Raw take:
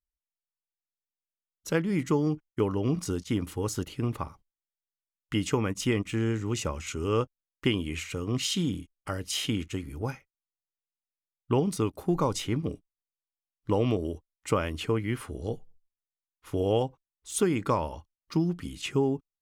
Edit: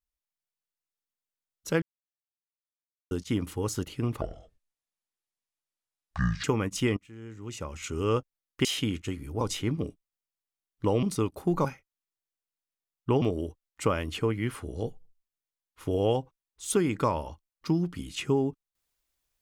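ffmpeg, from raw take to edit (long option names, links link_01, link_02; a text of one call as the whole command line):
ffmpeg -i in.wav -filter_complex "[0:a]asplit=11[link_01][link_02][link_03][link_04][link_05][link_06][link_07][link_08][link_09][link_10][link_11];[link_01]atrim=end=1.82,asetpts=PTS-STARTPTS,afade=type=out:start_time=1.816:duration=0.004:curve=hsin[link_12];[link_02]atrim=start=1.82:end=3.11,asetpts=PTS-STARTPTS,volume=0[link_13];[link_03]atrim=start=3.11:end=4.214,asetpts=PTS-STARTPTS,afade=type=in:duration=0.004:curve=hsin[link_14];[link_04]atrim=start=4.21:end=5.48,asetpts=PTS-STARTPTS,asetrate=25137,aresample=44100[link_15];[link_05]atrim=start=5.476:end=6.01,asetpts=PTS-STARTPTS,afade=type=out:start_time=0.53:duration=0.004:curve=hsin:silence=0.0944061[link_16];[link_06]atrim=start=6.01:end=7.692,asetpts=PTS-STARTPTS,afade=type=in:duration=0.97:curve=qua:silence=0.0944061[link_17];[link_07]atrim=start=9.308:end=10.072[link_18];[link_08]atrim=start=12.258:end=13.882[link_19];[link_09]atrim=start=11.638:end=12.262[link_20];[link_10]atrim=start=10.068:end=11.642[link_21];[link_11]atrim=start=13.878[link_22];[link_12][link_13][link_14]concat=n=3:v=0:a=1[link_23];[link_23][link_15]acrossfade=duration=0.004:curve1=hsin:curve2=hsin[link_24];[link_16][link_17]concat=n=2:v=0:a=1[link_25];[link_24][link_25]acrossfade=duration=0.004:curve1=hsin:curve2=hsin[link_26];[link_26][link_18]acrossfade=duration=0.004:curve1=hsin:curve2=hsin[link_27];[link_27][link_19]acrossfade=duration=0.004:curve1=hsin:curve2=hsin[link_28];[link_28][link_20]acrossfade=duration=0.004:curve1=hsin:curve2=hsin[link_29];[link_29][link_21]acrossfade=duration=0.004:curve1=hsin:curve2=hsin[link_30];[link_30][link_22]acrossfade=duration=0.004:curve1=hsin:curve2=hsin" out.wav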